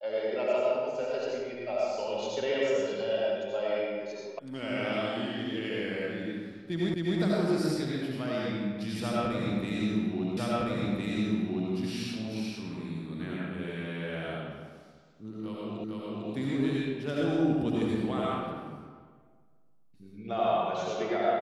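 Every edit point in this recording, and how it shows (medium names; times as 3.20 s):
4.39 s: sound stops dead
6.94 s: repeat of the last 0.26 s
10.37 s: repeat of the last 1.36 s
15.84 s: repeat of the last 0.45 s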